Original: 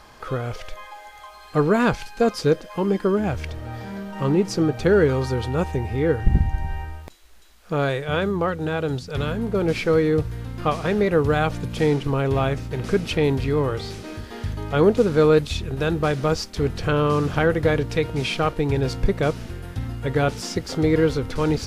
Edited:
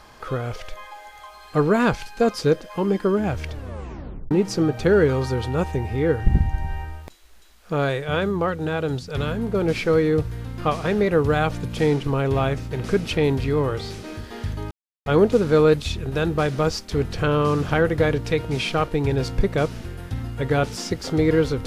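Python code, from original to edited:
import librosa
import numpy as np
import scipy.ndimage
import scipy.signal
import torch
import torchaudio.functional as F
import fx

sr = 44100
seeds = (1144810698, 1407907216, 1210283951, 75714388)

y = fx.edit(x, sr, fx.tape_stop(start_s=3.51, length_s=0.8),
    fx.insert_silence(at_s=14.71, length_s=0.35), tone=tone)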